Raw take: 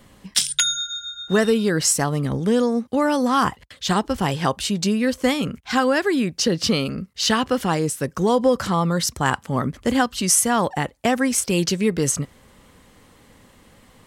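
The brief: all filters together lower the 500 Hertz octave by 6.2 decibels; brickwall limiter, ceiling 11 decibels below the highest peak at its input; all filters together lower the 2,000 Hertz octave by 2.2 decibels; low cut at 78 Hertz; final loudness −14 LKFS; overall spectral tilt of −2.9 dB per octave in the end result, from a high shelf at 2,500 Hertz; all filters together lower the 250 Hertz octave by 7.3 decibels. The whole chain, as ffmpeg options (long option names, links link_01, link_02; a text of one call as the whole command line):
ffmpeg -i in.wav -af "highpass=78,equalizer=frequency=250:width_type=o:gain=-8,equalizer=frequency=500:width_type=o:gain=-5,equalizer=frequency=2000:width_type=o:gain=-4,highshelf=frequency=2500:gain=3.5,volume=11dB,alimiter=limit=-2dB:level=0:latency=1" out.wav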